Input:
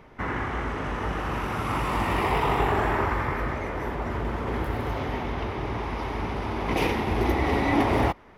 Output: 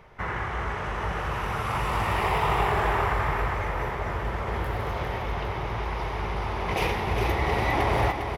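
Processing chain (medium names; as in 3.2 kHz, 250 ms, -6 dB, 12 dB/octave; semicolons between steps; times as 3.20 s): peaking EQ 270 Hz -15 dB 0.54 oct; feedback delay 404 ms, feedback 54%, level -7 dB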